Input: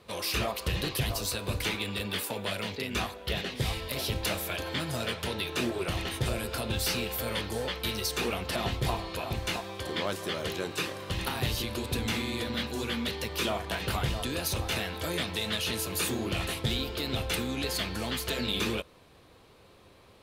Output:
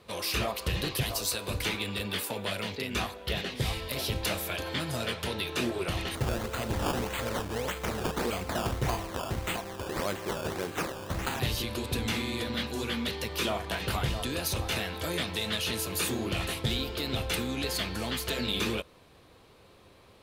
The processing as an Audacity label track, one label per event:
1.030000	1.510000	tone controls bass -6 dB, treble +3 dB
6.150000	11.400000	decimation with a swept rate 15× 1.7 Hz

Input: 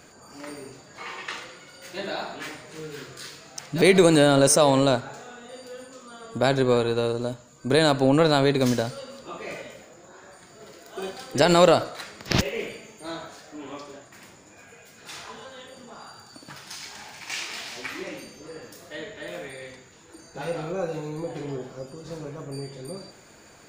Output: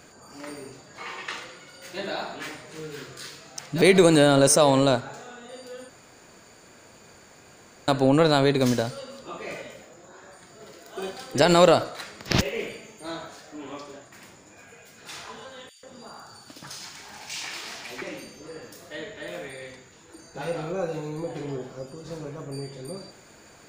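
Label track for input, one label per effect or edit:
5.890000	7.880000	room tone
15.690000	18.020000	bands offset in time highs, lows 140 ms, split 2.4 kHz

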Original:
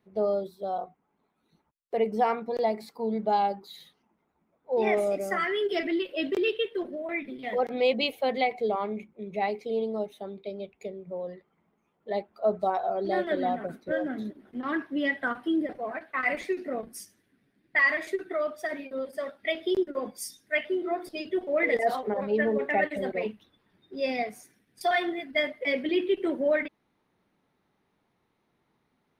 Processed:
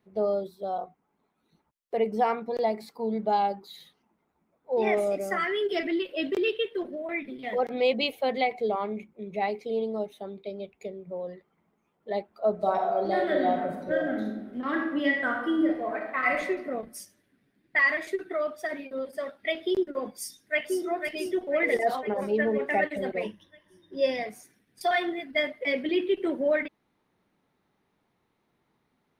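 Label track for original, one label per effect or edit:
12.530000	16.400000	reverb throw, RT60 0.95 s, DRR 1.5 dB
20.090000	20.840000	echo throw 500 ms, feedback 55%, level -6 dB
23.230000	24.260000	rippled EQ curve crests per octave 1.2, crest to trough 11 dB

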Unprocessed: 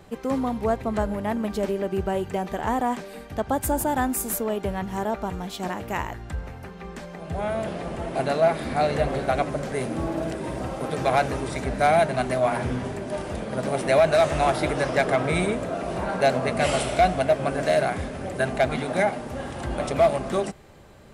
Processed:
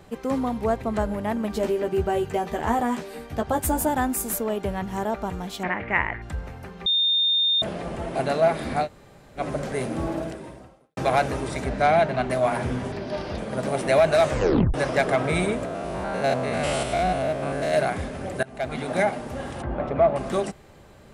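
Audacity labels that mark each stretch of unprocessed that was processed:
1.520000	3.890000	doubling 13 ms -4 dB
5.630000	6.220000	resonant low-pass 2.1 kHz, resonance Q 5.2
6.860000	7.620000	bleep 3.64 kHz -18 dBFS
8.840000	9.400000	room tone, crossfade 0.10 s
10.130000	10.970000	fade out quadratic
11.690000	12.290000	low-pass 6.7 kHz -> 3.8 kHz
12.920000	13.380000	resonant high shelf 6.3 kHz -9 dB, Q 3
14.290000	14.290000	tape stop 0.45 s
15.650000	17.740000	spectrogram pixelated in time every 100 ms
18.430000	18.930000	fade in linear, from -23.5 dB
19.620000	20.160000	low-pass 1.6 kHz

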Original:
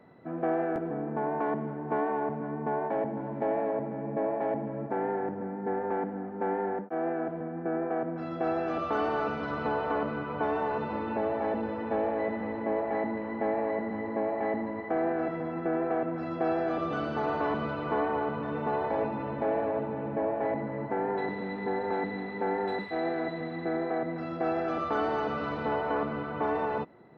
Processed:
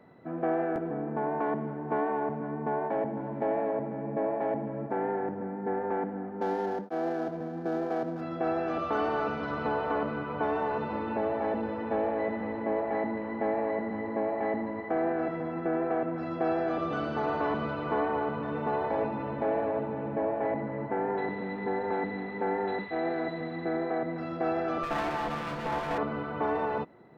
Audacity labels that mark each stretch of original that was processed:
6.410000	8.210000	median filter over 15 samples
20.400000	23.110000	low-pass 3.9 kHz 24 dB/octave
24.830000	25.980000	comb filter that takes the minimum delay 5.8 ms

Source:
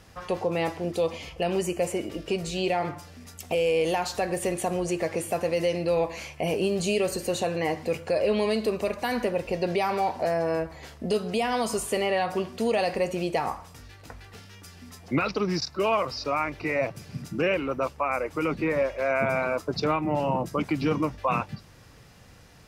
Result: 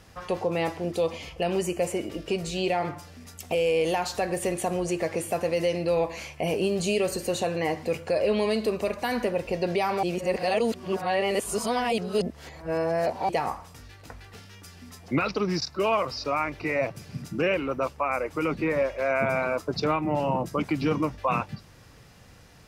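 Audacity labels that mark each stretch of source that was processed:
10.030000	13.290000	reverse

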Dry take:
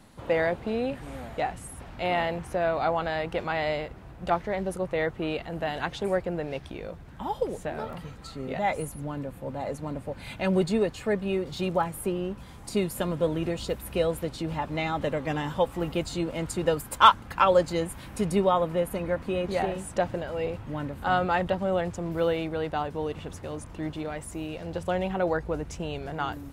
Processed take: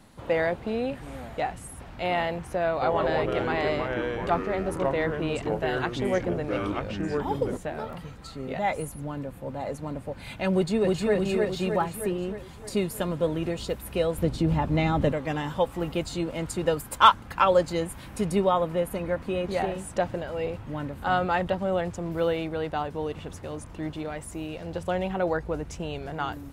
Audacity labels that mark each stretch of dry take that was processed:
2.700000	7.570000	ever faster or slower copies 119 ms, each echo -4 st, echoes 3
10.530000	11.140000	echo throw 310 ms, feedback 60%, level -1.5 dB
14.180000	15.120000	bass shelf 400 Hz +11 dB

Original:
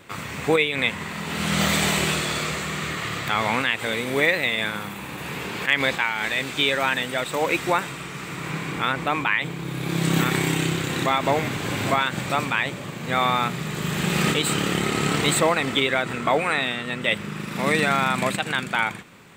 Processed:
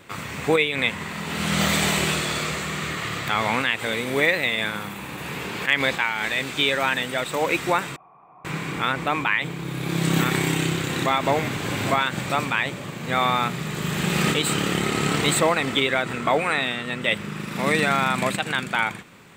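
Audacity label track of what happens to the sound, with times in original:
7.960000	8.450000	cascade formant filter a

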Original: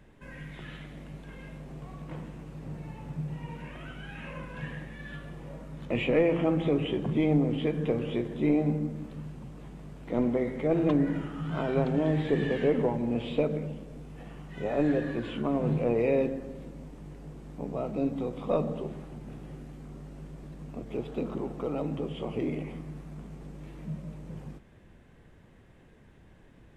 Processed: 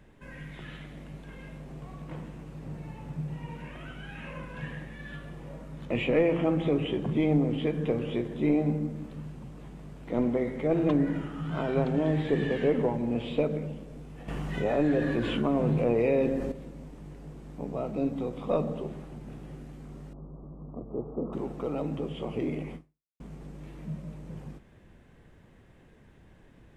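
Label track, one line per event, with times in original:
14.280000	16.520000	level flattener amount 50%
20.130000	21.330000	elliptic low-pass 1.2 kHz
22.750000	23.200000	fade out exponential

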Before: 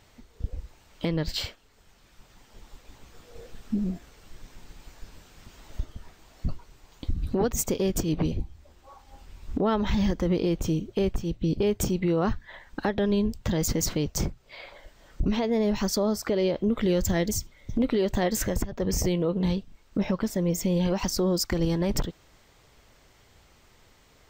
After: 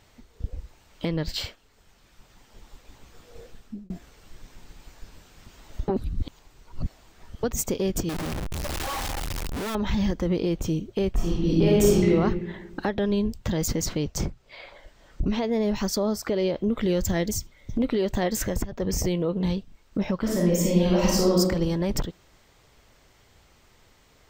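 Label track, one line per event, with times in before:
3.410000	3.900000	fade out
5.880000	7.430000	reverse
8.090000	9.750000	one-bit comparator
11.130000	12.090000	reverb throw, RT60 1.4 s, DRR -5.5 dB
13.750000	15.370000	treble shelf 11 kHz -7 dB
20.200000	21.380000	reverb throw, RT60 0.94 s, DRR -4 dB

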